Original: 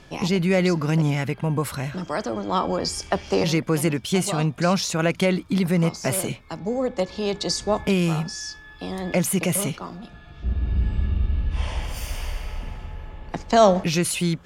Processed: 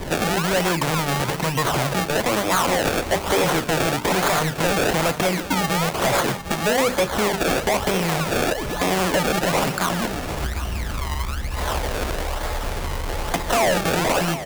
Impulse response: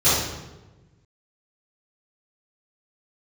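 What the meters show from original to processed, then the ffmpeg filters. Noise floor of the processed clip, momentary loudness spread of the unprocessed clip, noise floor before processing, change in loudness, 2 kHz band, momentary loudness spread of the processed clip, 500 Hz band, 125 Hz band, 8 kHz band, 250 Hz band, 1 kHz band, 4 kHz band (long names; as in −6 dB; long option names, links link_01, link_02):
−30 dBFS, 14 LU, −45 dBFS, +2.0 dB, +8.0 dB, 8 LU, +2.0 dB, −2.0 dB, +3.0 dB, −1.0 dB, +6.0 dB, +5.0 dB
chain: -filter_complex "[0:a]apsyclip=19.5dB,adynamicequalizer=threshold=0.112:dfrequency=430:dqfactor=1.1:tfrequency=430:tqfactor=1.1:attack=5:release=100:ratio=0.375:range=3:mode=cutabove:tftype=bell,acompressor=threshold=-14dB:ratio=10,bandreject=frequency=50:width_type=h:width=6,bandreject=frequency=100:width_type=h:width=6,bandreject=frequency=150:width_type=h:width=6,bandreject=frequency=200:width_type=h:width=6,bandreject=frequency=250:width_type=h:width=6,bandreject=frequency=300:width_type=h:width=6,bandreject=frequency=350:width_type=h:width=6,bandreject=frequency=400:width_type=h:width=6,bandreject=frequency=450:width_type=h:width=6,acrusher=samples=30:mix=1:aa=0.000001:lfo=1:lforange=30:lforate=1.1,acrossover=split=400|3000[link_01][link_02][link_03];[link_01]acompressor=threshold=-33dB:ratio=2.5[link_04];[link_04][link_02][link_03]amix=inputs=3:normalize=0,asoftclip=type=hard:threshold=-16.5dB,asplit=2[link_05][link_06];[link_06]aecho=0:1:754:0.224[link_07];[link_05][link_07]amix=inputs=2:normalize=0,volume=2dB"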